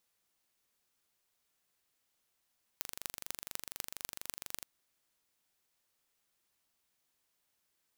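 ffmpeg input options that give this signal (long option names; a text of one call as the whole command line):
ffmpeg -f lavfi -i "aevalsrc='0.376*eq(mod(n,1822),0)*(0.5+0.5*eq(mod(n,10932),0))':duration=1.82:sample_rate=44100" out.wav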